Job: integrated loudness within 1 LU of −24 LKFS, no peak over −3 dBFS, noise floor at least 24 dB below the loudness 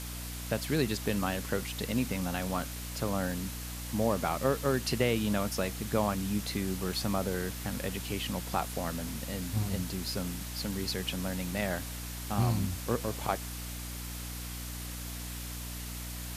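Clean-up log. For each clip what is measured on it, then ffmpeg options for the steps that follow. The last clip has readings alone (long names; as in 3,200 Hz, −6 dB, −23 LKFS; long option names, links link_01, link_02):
mains hum 60 Hz; hum harmonics up to 300 Hz; level of the hum −39 dBFS; background noise floor −40 dBFS; target noise floor −58 dBFS; integrated loudness −33.5 LKFS; sample peak −14.5 dBFS; target loudness −24.0 LKFS
→ -af "bandreject=frequency=60:width_type=h:width=6,bandreject=frequency=120:width_type=h:width=6,bandreject=frequency=180:width_type=h:width=6,bandreject=frequency=240:width_type=h:width=6,bandreject=frequency=300:width_type=h:width=6"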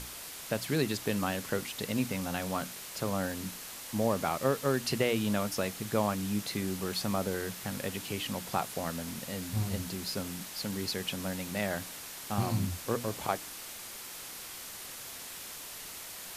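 mains hum none found; background noise floor −44 dBFS; target noise floor −58 dBFS
→ -af "afftdn=noise_reduction=14:noise_floor=-44"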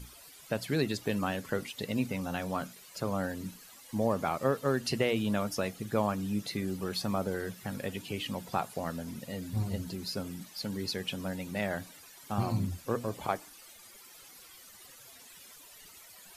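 background noise floor −54 dBFS; target noise floor −58 dBFS
→ -af "afftdn=noise_reduction=6:noise_floor=-54"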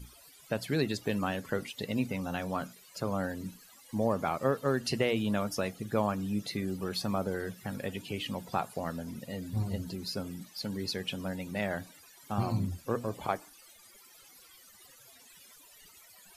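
background noise floor −57 dBFS; target noise floor −58 dBFS
→ -af "afftdn=noise_reduction=6:noise_floor=-57"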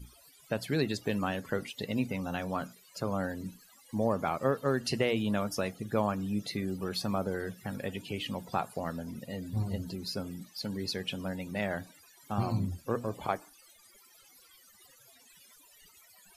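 background noise floor −60 dBFS; integrated loudness −34.0 LKFS; sample peak −15.0 dBFS; target loudness −24.0 LKFS
→ -af "volume=10dB"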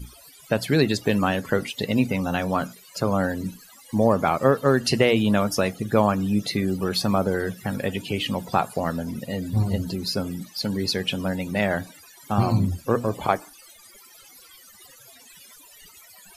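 integrated loudness −24.0 LKFS; sample peak −5.0 dBFS; background noise floor −50 dBFS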